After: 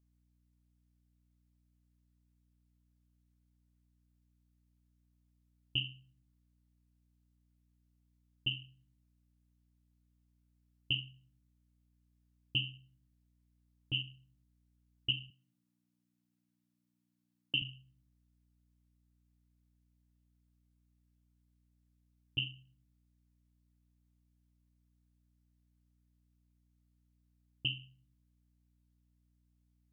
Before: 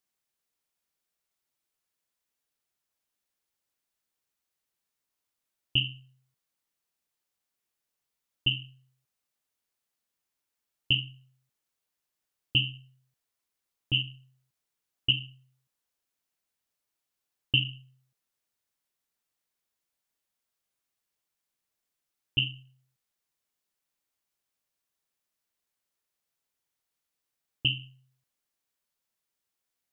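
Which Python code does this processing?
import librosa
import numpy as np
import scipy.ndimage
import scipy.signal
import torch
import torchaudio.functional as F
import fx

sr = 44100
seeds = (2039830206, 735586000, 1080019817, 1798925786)

y = fx.add_hum(x, sr, base_hz=60, snr_db=25)
y = fx.highpass(y, sr, hz=160.0, slope=24, at=(15.3, 17.62))
y = F.gain(torch.from_numpy(y), -8.5).numpy()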